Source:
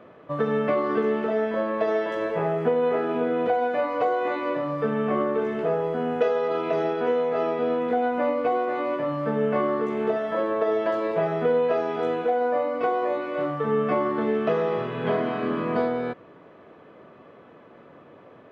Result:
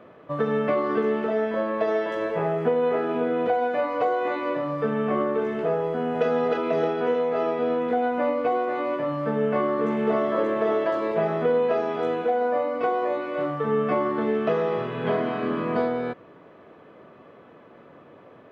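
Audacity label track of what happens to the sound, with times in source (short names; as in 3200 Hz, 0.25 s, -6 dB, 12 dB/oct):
5.830000	6.260000	echo throw 0.31 s, feedback 55%, level -2.5 dB
9.200000	10.260000	echo throw 0.58 s, feedback 45%, level -3.5 dB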